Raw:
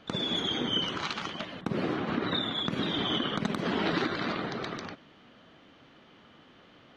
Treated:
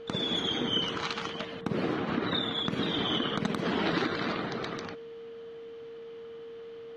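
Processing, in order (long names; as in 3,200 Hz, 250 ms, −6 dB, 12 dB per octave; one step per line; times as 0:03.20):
steady tone 460 Hz −41 dBFS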